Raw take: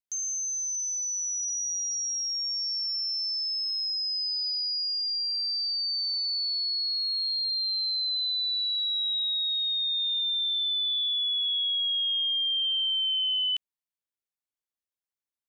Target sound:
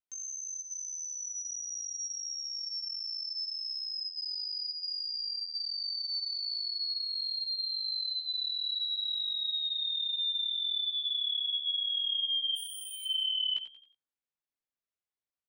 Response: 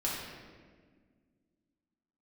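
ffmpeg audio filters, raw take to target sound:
-filter_complex "[0:a]aemphasis=mode=reproduction:type=50fm,asplit=3[s0][s1][s2];[s0]afade=t=out:st=12.55:d=0.02[s3];[s1]aeval=exprs='0.015*(abs(mod(val(0)/0.015+3,4)-2)-1)':c=same,afade=t=in:st=12.55:d=0.02,afade=t=out:st=13.04:d=0.02[s4];[s2]afade=t=in:st=13.04:d=0.02[s5];[s3][s4][s5]amix=inputs=3:normalize=0,asplit=5[s6][s7][s8][s9][s10];[s7]adelay=90,afreqshift=57,volume=0.282[s11];[s8]adelay=180,afreqshift=114,volume=0.107[s12];[s9]adelay=270,afreqshift=171,volume=0.0407[s13];[s10]adelay=360,afreqshift=228,volume=0.0155[s14];[s6][s11][s12][s13][s14]amix=inputs=5:normalize=0,asplit=2[s15][s16];[1:a]atrim=start_sample=2205,atrim=end_sample=3528,adelay=12[s17];[s16][s17]afir=irnorm=-1:irlink=0,volume=0.0501[s18];[s15][s18]amix=inputs=2:normalize=0,flanger=delay=16.5:depth=5.2:speed=0.73,volume=1.12"

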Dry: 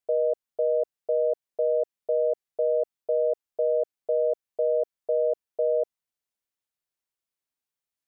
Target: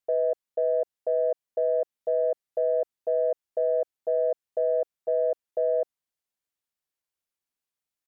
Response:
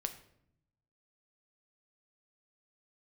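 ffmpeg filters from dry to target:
-af "asetrate=45392,aresample=44100,atempo=0.971532,acontrast=83,volume=0.422"

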